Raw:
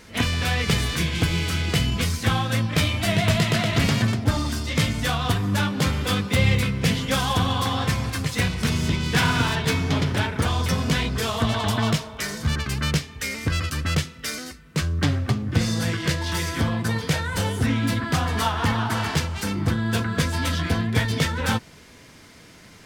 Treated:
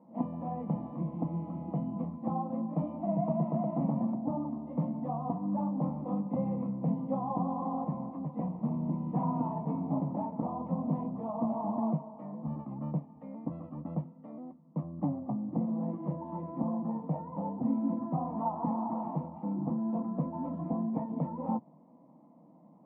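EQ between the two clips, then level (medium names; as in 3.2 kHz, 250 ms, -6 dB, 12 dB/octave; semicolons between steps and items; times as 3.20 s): Chebyshev band-pass 140–970 Hz, order 3; distance through air 370 m; static phaser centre 410 Hz, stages 6; -3.0 dB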